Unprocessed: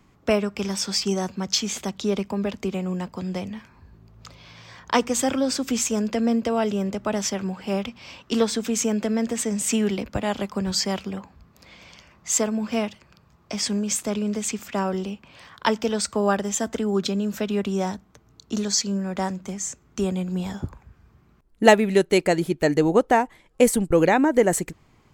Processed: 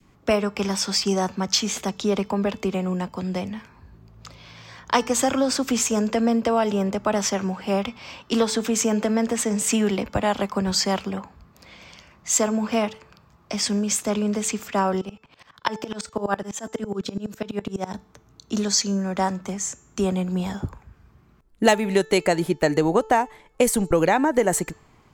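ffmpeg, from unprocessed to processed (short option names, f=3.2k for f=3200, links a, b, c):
-filter_complex "[0:a]asettb=1/sr,asplit=3[a][b][c];[a]atrim=end=15.014[d];[b]atrim=start=15.01:end=17.94,asetpts=PTS-STARTPTS,afade=t=in:d=0.004:c=qsin,afade=t=out:st=2.926:d=0.004:c=qsin,aeval=exprs='val(0)*pow(10,-24*if(lt(mod(-12*n/s,1),2*abs(-12)/1000),1-mod(-12*n/s,1)/(2*abs(-12)/1000),(mod(-12*n/s,1)-2*abs(-12)/1000)/(1-2*abs(-12)/1000))/20)':c=same[e];[c]atrim=start=17.936[f];[d][e]acrossfade=d=0.004:c1=hsin:c2=qsin[g];[g][f]acrossfade=d=0.004:c1=qsin:c2=hsin,bandreject=f=438.7:t=h:w=4,bandreject=f=877.4:t=h:w=4,bandreject=f=1.3161k:t=h:w=4,bandreject=f=1.7548k:t=h:w=4,bandreject=f=2.1935k:t=h:w=4,bandreject=f=2.6322k:t=h:w=4,bandreject=f=3.0709k:t=h:w=4,bandreject=f=3.5096k:t=h:w=4,bandreject=f=3.9483k:t=h:w=4,bandreject=f=4.387k:t=h:w=4,bandreject=f=4.8257k:t=h:w=4,bandreject=f=5.2644k:t=h:w=4,bandreject=f=5.7031k:t=h:w=4,bandreject=f=6.1418k:t=h:w=4,bandreject=f=6.5805k:t=h:w=4,bandreject=f=7.0192k:t=h:w=4,bandreject=f=7.4579k:t=h:w=4,adynamicequalizer=threshold=0.02:dfrequency=970:dqfactor=0.78:tfrequency=970:tqfactor=0.78:attack=5:release=100:ratio=0.375:range=3.5:mode=boostabove:tftype=bell,acrossover=split=140|3000[h][i][j];[i]acompressor=threshold=-19dB:ratio=3[k];[h][k][j]amix=inputs=3:normalize=0,volume=1.5dB"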